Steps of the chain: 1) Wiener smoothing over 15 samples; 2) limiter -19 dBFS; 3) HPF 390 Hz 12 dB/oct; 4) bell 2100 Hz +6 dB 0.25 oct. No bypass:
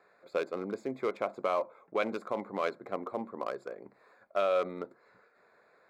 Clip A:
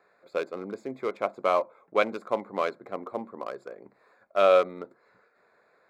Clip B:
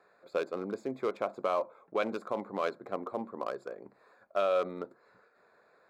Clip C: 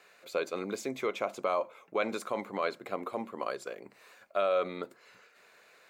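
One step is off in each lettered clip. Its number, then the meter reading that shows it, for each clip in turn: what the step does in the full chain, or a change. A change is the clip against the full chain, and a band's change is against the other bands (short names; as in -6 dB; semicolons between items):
2, crest factor change +2.0 dB; 4, 2 kHz band -1.5 dB; 1, 4 kHz band +3.5 dB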